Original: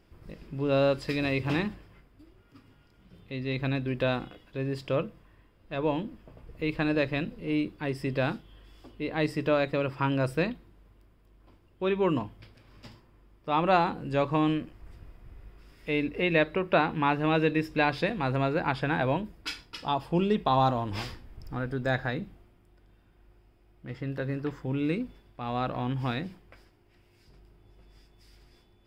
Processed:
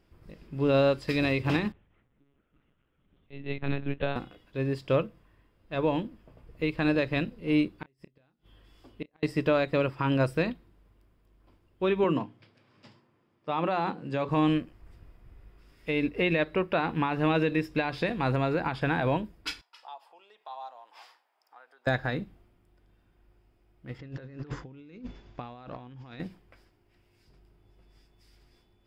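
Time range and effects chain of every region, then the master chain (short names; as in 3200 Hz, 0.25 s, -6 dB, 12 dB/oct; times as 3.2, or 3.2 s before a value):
1.72–4.16 echo 0.18 s -14 dB + monotone LPC vocoder at 8 kHz 140 Hz + upward expander, over -41 dBFS
7.69–9.23 flipped gate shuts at -23 dBFS, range -37 dB + doubler 30 ms -14 dB
12.04–14.29 HPF 120 Hz 24 dB/oct + air absorption 53 m + notches 60/120/180/240/300/360/420 Hz
19.61–21.87 dynamic EQ 1200 Hz, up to -5 dB, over -36 dBFS, Q 0.96 + compressor 2:1, threshold -35 dBFS + ladder high-pass 670 Hz, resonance 45%
23.99–26.2 careless resampling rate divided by 3×, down none, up filtered + negative-ratio compressor -41 dBFS
whole clip: limiter -20 dBFS; upward expander 1.5:1, over -42 dBFS; gain +4.5 dB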